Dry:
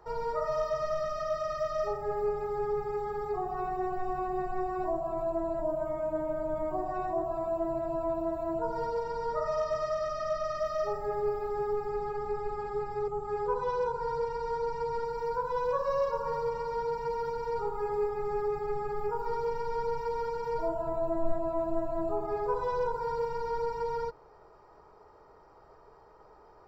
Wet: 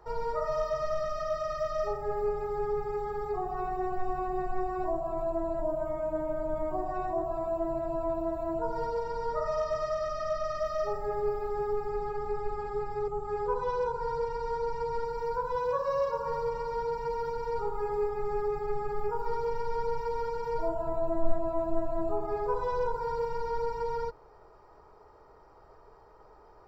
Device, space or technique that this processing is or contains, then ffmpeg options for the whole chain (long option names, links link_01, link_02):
low shelf boost with a cut just above: -filter_complex "[0:a]lowshelf=frequency=86:gain=5.5,equalizer=frequency=170:width_type=o:width=0.77:gain=-2,asettb=1/sr,asplit=3[link_01][link_02][link_03];[link_01]atrim=end=15.554[link_04];[link_02]atrim=start=15.55:end=16.28,asetpts=PTS-STARTPTS,afade=type=in:duration=0.004:curve=qsin,afade=type=out:start_time=0.726:duration=0.004:curve=qsin,highpass=52[link_05];[link_03]atrim=start=16.276[link_06];[link_04][link_05]acrossfade=duration=0.004:curve1=hsin:curve2=qsin[link_07];[link_07][link_06]acrossfade=duration=0.004:curve1=qsin:curve2=hsin"